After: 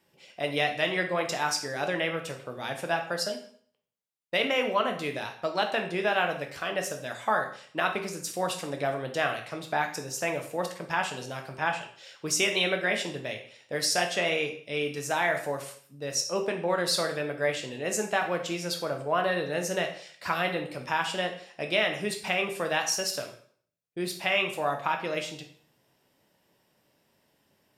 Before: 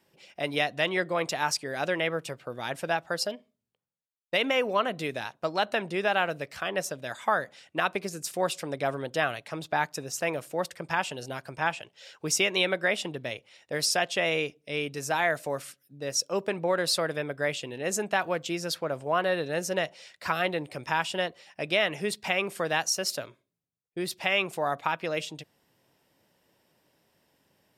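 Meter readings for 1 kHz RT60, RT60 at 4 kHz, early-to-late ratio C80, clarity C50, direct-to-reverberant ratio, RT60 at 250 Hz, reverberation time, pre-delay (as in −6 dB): 0.55 s, 0.50 s, 13.0 dB, 9.0 dB, 3.5 dB, 0.55 s, 0.55 s, 5 ms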